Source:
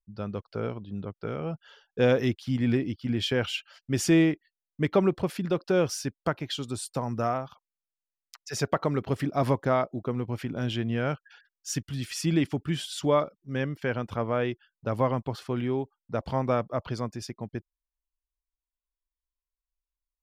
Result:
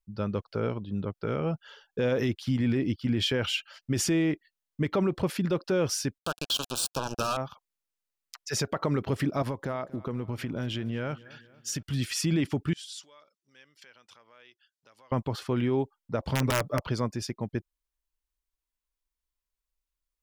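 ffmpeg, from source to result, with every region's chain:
-filter_complex "[0:a]asettb=1/sr,asplit=3[a][b][c];[a]atrim=end=6.184[d];[b]atrim=start=6.18:end=7.37,asetpts=PTS-STARTPTS,afade=t=in:d=0.004:c=qsin,afade=t=out:st=1.186:d=0.004:c=qsin,equalizer=f=4.7k:w=0.36:g=14,acrusher=bits=3:mix=0:aa=0.5,asuperstop=centerf=2000:order=8:qfactor=2.4[e];[c]atrim=start=7.366[f];[d][e]acrossfade=d=0.004:c1=hsin:c2=qsin[g];[g][f]acrossfade=d=0.004:c1=qsin:c2=hsin,asettb=1/sr,asplit=3[h][i][j];[h]atrim=end=9.424[k];[i]atrim=start=9.42:end=11.83,asetpts=PTS-STARTPTS,afade=t=in:d=0.004:c=qsin,afade=t=out:st=2.406:d=0.004:c=qsin,acompressor=threshold=-32dB:ratio=6:attack=3.2:release=140:knee=1:detection=peak,aecho=1:1:235|470|705|940:0.0944|0.05|0.0265|0.0141,atrim=end_sample=106281[l];[j]atrim=start=11.826[m];[k][l]acrossfade=d=0.004:c1=hsin:c2=qsin[n];[n][m]acrossfade=d=0.004:c1=qsin:c2=hsin,asettb=1/sr,asplit=3[o][p][q];[o]atrim=end=12.734[r];[p]atrim=start=12.73:end=15.12,asetpts=PTS-STARTPTS,afade=t=in:d=0.004:c=qsin,afade=t=out:st=2.386:d=0.004:c=qsin,acompressor=threshold=-40dB:ratio=4:attack=3.2:release=140:knee=1:detection=peak,bandpass=f=5.8k:t=q:w=1[s];[q]atrim=start=15.116[t];[r][s]acrossfade=d=0.004:c1=hsin:c2=qsin[u];[u][t]acrossfade=d=0.004:c1=qsin:c2=hsin,asettb=1/sr,asplit=3[v][w][x];[v]atrim=end=16.324[y];[w]atrim=start=16.32:end=16.8,asetpts=PTS-STARTPTS,afade=t=in:d=0.004:c=qsin,afade=t=out:st=0.476:d=0.004:c=qsin,equalizer=f=960:t=o:w=0.64:g=-5.5,aecho=1:1:6.9:0.88,atrim=end_sample=21168,aeval=exprs='(mod(6.68*val(0)+1,2)-1)/6.68':c=same[z];[x]atrim=start=16.796[aa];[y][z]acrossfade=d=0.004:c1=hsin:c2=qsin[ab];[ab][aa]acrossfade=d=0.004:c1=qsin:c2=hsin,bandreject=f=720:w=12,alimiter=limit=-22dB:level=0:latency=1:release=52,volume=3.5dB"

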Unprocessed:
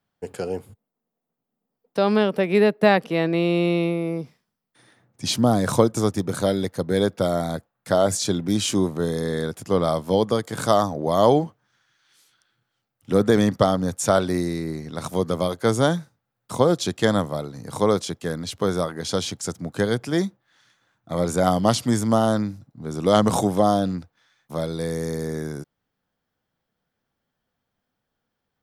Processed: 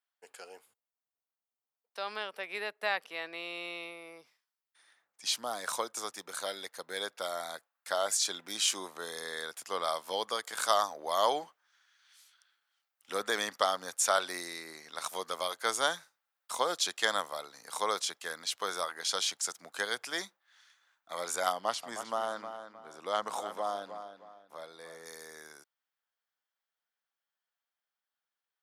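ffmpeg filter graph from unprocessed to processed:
-filter_complex "[0:a]asettb=1/sr,asplit=3[a][b][c];[a]atrim=end=21.524[d];[b]atrim=start=21.52:end=25.06,asetpts=PTS-STARTPTS,afade=t=in:d=0.004:c=qsin,afade=t=out:st=3.536:d=0.004:c=qsin,highshelf=f=2.5k:g=-11.5,asplit=2[e][f];[f]adelay=311,lowpass=f=3.6k:p=1,volume=-9dB,asplit=2[g][h];[h]adelay=311,lowpass=f=3.6k:p=1,volume=0.34,asplit=2[i][j];[j]adelay=311,lowpass=f=3.6k:p=1,volume=0.34,asplit=2[k][l];[l]adelay=311,lowpass=f=3.6k:p=1,volume=0.34[m];[e][g][i][k][m]amix=inputs=5:normalize=0,atrim=end_sample=156114[n];[c]atrim=start=25.056[o];[d][n]acrossfade=d=0.004:c1=hsin:c2=qsin[p];[p][o]acrossfade=d=0.004:c1=qsin:c2=hsin,highpass=1.1k,dynaudnorm=f=830:g=17:m=11.5dB,volume=-8.5dB"

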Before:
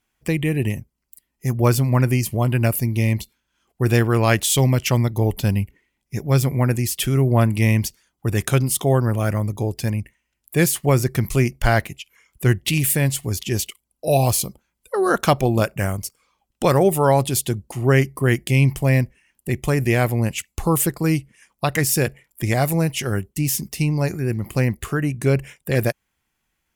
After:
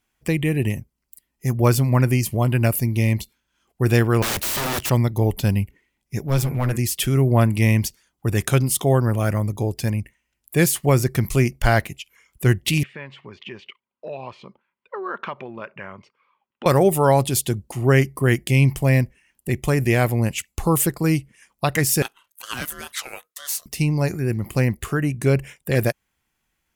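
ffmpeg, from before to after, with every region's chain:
-filter_complex "[0:a]asettb=1/sr,asplit=3[a][b][c];[a]atrim=end=4.224[d];[b]atrim=start=4.22:end=4.9,asetpts=PTS-STARTPTS,afade=t=in:d=0.004:c=qsin,afade=t=out:st=0.676:d=0.004:c=qsin,highshelf=f=3.4k:g=7.5,acrusher=bits=3:mode=log:mix=0:aa=0.000001,aeval=exprs='(mod(8.41*val(0)+1,2)-1)/8.41':c=same[e];[c]atrim=start=4.896[f];[d][e]acrossfade=d=0.004:c1=hsin:c2=qsin[g];[g][f]acrossfade=d=0.004:c1=qsin:c2=hsin,asettb=1/sr,asplit=3[h][i][j];[h]atrim=end=6.234[k];[i]atrim=start=6.23:end=6.77,asetpts=PTS-STARTPTS,afade=t=in:d=0.004:c=qsin,afade=t=out:st=0.536:d=0.004:c=qsin,bandreject=f=117:t=h:w=4,bandreject=f=234:t=h:w=4,bandreject=f=351:t=h:w=4,bandreject=f=468:t=h:w=4,bandreject=f=585:t=h:w=4,bandreject=f=702:t=h:w=4,bandreject=f=819:t=h:w=4,bandreject=f=936:t=h:w=4,bandreject=f=1.053k:t=h:w=4,bandreject=f=1.17k:t=h:w=4,bandreject=f=1.287k:t=h:w=4,bandreject=f=1.404k:t=h:w=4,bandreject=f=1.521k:t=h:w=4,bandreject=f=1.638k:t=h:w=4,bandreject=f=1.755k:t=h:w=4,bandreject=f=1.872k:t=h:w=4,bandreject=f=1.989k:t=h:w=4,bandreject=f=2.106k:t=h:w=4,bandreject=f=2.223k:t=h:w=4,bandreject=f=2.34k:t=h:w=4,bandreject=f=2.457k:t=h:w=4,bandreject=f=2.574k:t=h:w=4,aeval=exprs='clip(val(0),-1,0.112)':c=same[l];[j]atrim=start=6.766[m];[k][l]acrossfade=d=0.004:c1=hsin:c2=qsin[n];[n][m]acrossfade=d=0.004:c1=qsin:c2=hsin,asettb=1/sr,asplit=3[o][p][q];[o]atrim=end=12.834[r];[p]atrim=start=12.83:end=16.66,asetpts=PTS-STARTPTS,afade=t=in:d=0.004:c=qsin,afade=t=out:st=3.826:d=0.004:c=qsin,acompressor=threshold=-24dB:ratio=4:attack=3.2:release=140:knee=1:detection=peak,highpass=300,equalizer=f=300:t=q:w=4:g=-9,equalizer=f=490:t=q:w=4:g=-4,equalizer=f=720:t=q:w=4:g=-9,equalizer=f=1k:t=q:w=4:g=6,lowpass=f=2.8k:w=0.5412,lowpass=f=2.8k:w=1.3066[s];[q]atrim=start=16.656[t];[r][s]acrossfade=d=0.004:c1=hsin:c2=qsin[u];[u][t]acrossfade=d=0.004:c1=qsin:c2=hsin,asettb=1/sr,asplit=3[v][w][x];[v]atrim=end=22.024[y];[w]atrim=start=22.02:end=23.66,asetpts=PTS-STARTPTS,afade=t=in:d=0.004:c=qsin,afade=t=out:st=1.636:d=0.004:c=qsin,highpass=970,aeval=exprs='val(0)*sin(2*PI*870*n/s)':c=same[z];[x]atrim=start=23.656[aa];[y][z]acrossfade=d=0.004:c1=hsin:c2=qsin[ab];[ab][aa]acrossfade=d=0.004:c1=qsin:c2=hsin"

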